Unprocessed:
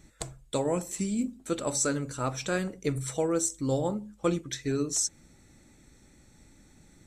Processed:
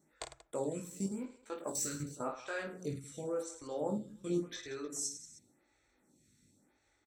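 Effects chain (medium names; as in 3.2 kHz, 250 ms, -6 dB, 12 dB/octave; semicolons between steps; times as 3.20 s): 0.84–1.99 s: partial rectifier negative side -7 dB; high-pass 45 Hz; bass shelf 77 Hz -11.5 dB; level held to a coarse grid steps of 17 dB; 4.07–4.59 s: doubling 17 ms -3 dB; on a send: reverse bouncing-ball echo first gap 20 ms, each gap 1.6×, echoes 5; on the sum: lamp-driven phase shifter 0.91 Hz; trim -2 dB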